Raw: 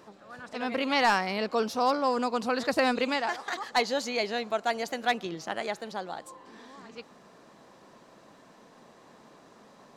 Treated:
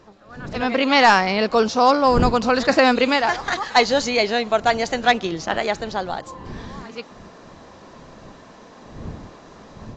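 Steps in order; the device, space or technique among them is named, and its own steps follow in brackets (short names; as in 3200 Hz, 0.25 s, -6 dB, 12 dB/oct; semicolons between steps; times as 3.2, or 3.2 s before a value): smartphone video outdoors (wind noise 230 Hz -45 dBFS; AGC gain up to 9 dB; gain +1.5 dB; AAC 48 kbps 16000 Hz)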